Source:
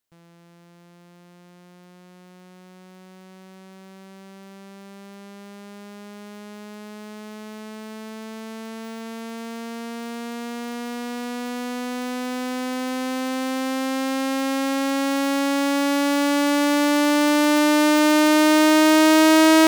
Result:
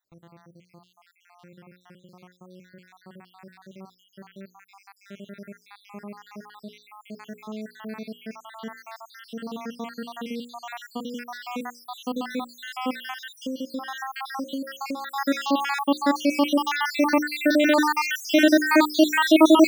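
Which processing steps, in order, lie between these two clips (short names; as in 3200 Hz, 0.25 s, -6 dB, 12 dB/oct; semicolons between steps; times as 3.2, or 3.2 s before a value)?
random spectral dropouts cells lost 74%; bell 8900 Hz -10 dB 0.92 oct; notches 60/120/180/240/300/360/420/480/540 Hz; 13.01–15.16 compressor 6:1, threshold -32 dBFS, peak gain reduction 9 dB; gain +4 dB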